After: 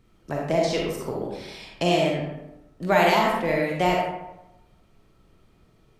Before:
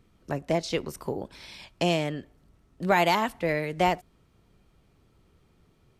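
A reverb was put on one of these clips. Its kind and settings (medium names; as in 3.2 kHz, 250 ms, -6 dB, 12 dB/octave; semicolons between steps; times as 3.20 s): algorithmic reverb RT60 0.94 s, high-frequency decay 0.55×, pre-delay 5 ms, DRR -2 dB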